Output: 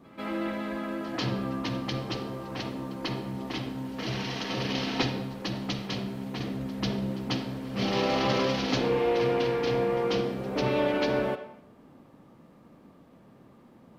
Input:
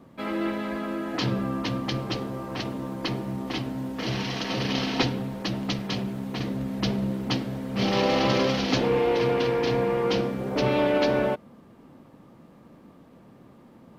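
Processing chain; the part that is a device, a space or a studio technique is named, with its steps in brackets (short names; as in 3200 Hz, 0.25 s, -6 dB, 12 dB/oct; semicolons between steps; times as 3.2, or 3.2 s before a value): filtered reverb send (on a send at -7.5 dB: HPF 320 Hz 24 dB/oct + LPF 5200 Hz + reverb RT60 0.70 s, pre-delay 40 ms); on the sum: reverse echo 0.144 s -20 dB; gain -3.5 dB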